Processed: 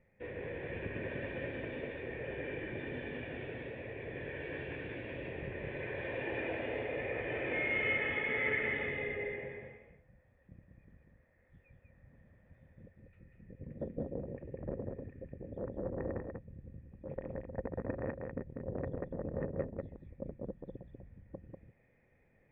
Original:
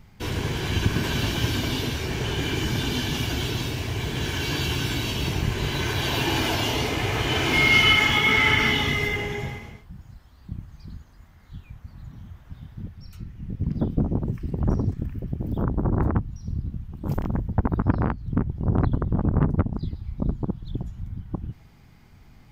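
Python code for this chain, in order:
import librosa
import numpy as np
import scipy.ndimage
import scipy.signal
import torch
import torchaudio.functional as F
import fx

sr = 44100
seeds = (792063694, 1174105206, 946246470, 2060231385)

p1 = fx.formant_cascade(x, sr, vowel='e')
p2 = fx.low_shelf(p1, sr, hz=120.0, db=-5.5)
p3 = p2 + fx.echo_single(p2, sr, ms=193, db=-4.0, dry=0)
y = p3 * librosa.db_to_amplitude(1.0)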